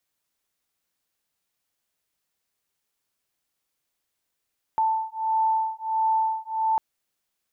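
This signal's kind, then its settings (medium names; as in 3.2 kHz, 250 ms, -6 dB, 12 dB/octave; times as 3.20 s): beating tones 884 Hz, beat 1.5 Hz, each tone -24.5 dBFS 2.00 s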